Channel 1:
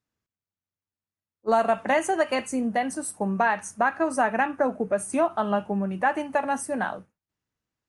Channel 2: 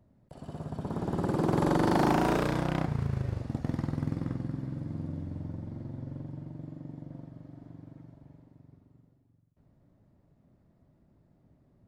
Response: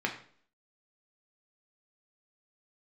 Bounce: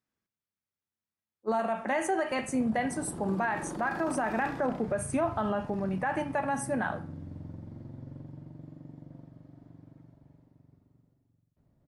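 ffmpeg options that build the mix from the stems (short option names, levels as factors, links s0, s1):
-filter_complex "[0:a]volume=0.501,asplit=2[s0][s1];[s1]volume=0.355[s2];[1:a]alimiter=level_in=1.26:limit=0.0631:level=0:latency=1:release=49,volume=0.794,adelay=2000,volume=0.596[s3];[2:a]atrim=start_sample=2205[s4];[s2][s4]afir=irnorm=-1:irlink=0[s5];[s0][s3][s5]amix=inputs=3:normalize=0,alimiter=limit=0.0944:level=0:latency=1:release=36"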